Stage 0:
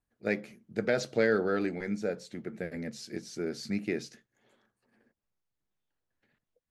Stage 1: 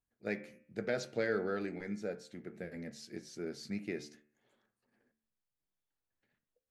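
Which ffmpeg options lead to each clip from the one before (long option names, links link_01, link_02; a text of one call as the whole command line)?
ffmpeg -i in.wav -af "bandreject=frequency=74.33:width_type=h:width=4,bandreject=frequency=148.66:width_type=h:width=4,bandreject=frequency=222.99:width_type=h:width=4,bandreject=frequency=297.32:width_type=h:width=4,bandreject=frequency=371.65:width_type=h:width=4,bandreject=frequency=445.98:width_type=h:width=4,bandreject=frequency=520.31:width_type=h:width=4,bandreject=frequency=594.64:width_type=h:width=4,bandreject=frequency=668.97:width_type=h:width=4,bandreject=frequency=743.3:width_type=h:width=4,bandreject=frequency=817.63:width_type=h:width=4,bandreject=frequency=891.96:width_type=h:width=4,bandreject=frequency=966.29:width_type=h:width=4,bandreject=frequency=1040.62:width_type=h:width=4,bandreject=frequency=1114.95:width_type=h:width=4,bandreject=frequency=1189.28:width_type=h:width=4,bandreject=frequency=1263.61:width_type=h:width=4,bandreject=frequency=1337.94:width_type=h:width=4,bandreject=frequency=1412.27:width_type=h:width=4,bandreject=frequency=1486.6:width_type=h:width=4,bandreject=frequency=1560.93:width_type=h:width=4,bandreject=frequency=1635.26:width_type=h:width=4,bandreject=frequency=1709.59:width_type=h:width=4,bandreject=frequency=1783.92:width_type=h:width=4,bandreject=frequency=1858.25:width_type=h:width=4,bandreject=frequency=1932.58:width_type=h:width=4,bandreject=frequency=2006.91:width_type=h:width=4,bandreject=frequency=2081.24:width_type=h:width=4,bandreject=frequency=2155.57:width_type=h:width=4,bandreject=frequency=2229.9:width_type=h:width=4,bandreject=frequency=2304.23:width_type=h:width=4,bandreject=frequency=2378.56:width_type=h:width=4,bandreject=frequency=2452.89:width_type=h:width=4,bandreject=frequency=2527.22:width_type=h:width=4,bandreject=frequency=2601.55:width_type=h:width=4,bandreject=frequency=2675.88:width_type=h:width=4,bandreject=frequency=2750.21:width_type=h:width=4,bandreject=frequency=2824.54:width_type=h:width=4,volume=-6.5dB" out.wav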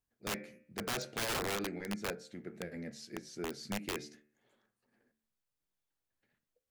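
ffmpeg -i in.wav -af "aeval=exprs='(mod(33.5*val(0)+1,2)-1)/33.5':channel_layout=same,volume=1dB" out.wav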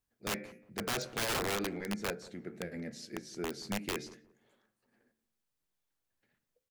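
ffmpeg -i in.wav -filter_complex "[0:a]asplit=2[link_01][link_02];[link_02]adelay=179,lowpass=frequency=850:poles=1,volume=-17dB,asplit=2[link_03][link_04];[link_04]adelay=179,lowpass=frequency=850:poles=1,volume=0.27,asplit=2[link_05][link_06];[link_06]adelay=179,lowpass=frequency=850:poles=1,volume=0.27[link_07];[link_01][link_03][link_05][link_07]amix=inputs=4:normalize=0,volume=2dB" out.wav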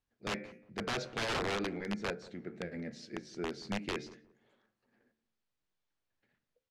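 ffmpeg -i in.wav -af "lowpass=4800" out.wav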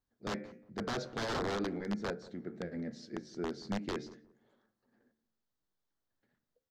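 ffmpeg -i in.wav -af "equalizer=frequency=250:width_type=o:width=0.67:gain=3,equalizer=frequency=2500:width_type=o:width=0.67:gain=-10,equalizer=frequency=10000:width_type=o:width=0.67:gain=-8" out.wav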